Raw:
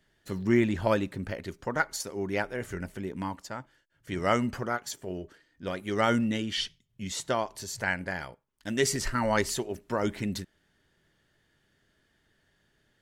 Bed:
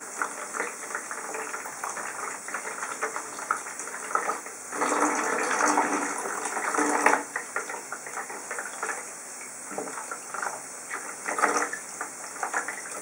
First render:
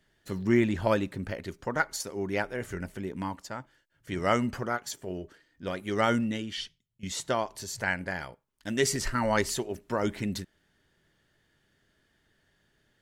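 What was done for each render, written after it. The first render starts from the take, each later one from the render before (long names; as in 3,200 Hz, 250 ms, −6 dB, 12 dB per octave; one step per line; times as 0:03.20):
0:06.03–0:07.03: fade out, to −15 dB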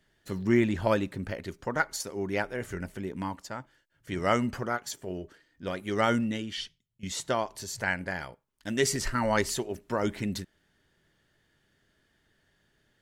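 no processing that can be heard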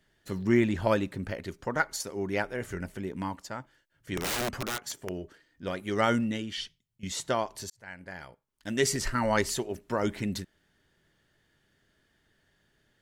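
0:04.17–0:05.10: wrap-around overflow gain 25.5 dB
0:07.70–0:08.82: fade in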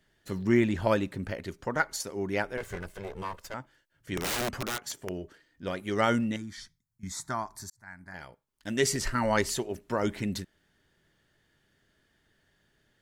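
0:02.57–0:03.54: lower of the sound and its delayed copy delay 1.9 ms
0:06.36–0:08.14: phaser with its sweep stopped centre 1,200 Hz, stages 4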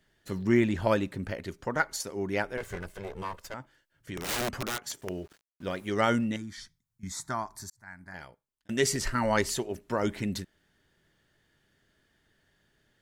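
0:03.53–0:04.29: downward compressor 3 to 1, threshold −34 dBFS
0:05.01–0:05.89: centre clipping without the shift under −53 dBFS
0:08.19–0:08.69: fade out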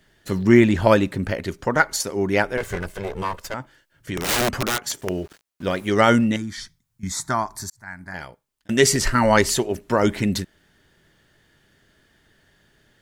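level +10 dB
brickwall limiter −2 dBFS, peak gain reduction 1.5 dB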